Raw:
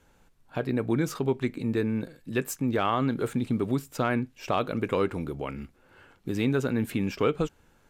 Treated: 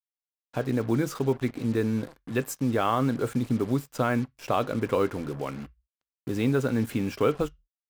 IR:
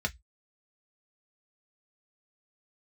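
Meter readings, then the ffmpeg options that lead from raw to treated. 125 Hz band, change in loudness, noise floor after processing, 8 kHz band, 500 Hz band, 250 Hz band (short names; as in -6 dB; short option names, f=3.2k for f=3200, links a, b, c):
+1.5 dB, +1.0 dB, under -85 dBFS, 0.0 dB, +1.0 dB, +1.0 dB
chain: -filter_complex "[0:a]agate=range=-33dB:threshold=-49dB:ratio=3:detection=peak,acrusher=bits=6:mix=0:aa=0.5,asplit=2[a][b];[1:a]atrim=start_sample=2205,asetrate=35280,aresample=44100[c];[b][c]afir=irnorm=-1:irlink=0,volume=-18dB[d];[a][d]amix=inputs=2:normalize=0"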